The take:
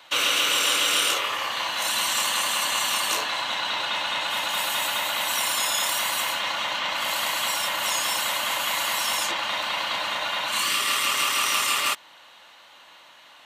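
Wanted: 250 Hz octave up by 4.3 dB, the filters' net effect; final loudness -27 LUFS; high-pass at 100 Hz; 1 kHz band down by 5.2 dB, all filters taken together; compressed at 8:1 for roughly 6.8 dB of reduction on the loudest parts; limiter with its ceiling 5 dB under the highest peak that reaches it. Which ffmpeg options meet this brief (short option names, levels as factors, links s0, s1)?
-af "highpass=100,equalizer=f=250:t=o:g=6,equalizer=f=1000:t=o:g=-6.5,acompressor=threshold=0.0501:ratio=8,volume=1.26,alimiter=limit=0.112:level=0:latency=1"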